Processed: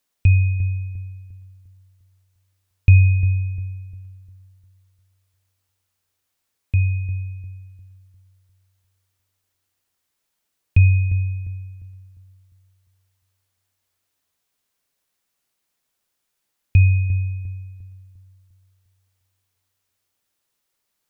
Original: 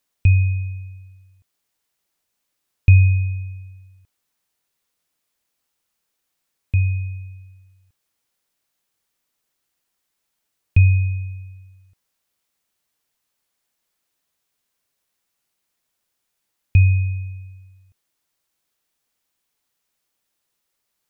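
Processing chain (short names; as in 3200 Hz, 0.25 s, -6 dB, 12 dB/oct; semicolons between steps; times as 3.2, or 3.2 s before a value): de-hum 167.2 Hz, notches 16; on a send: analogue delay 0.351 s, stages 4096, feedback 38%, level -11.5 dB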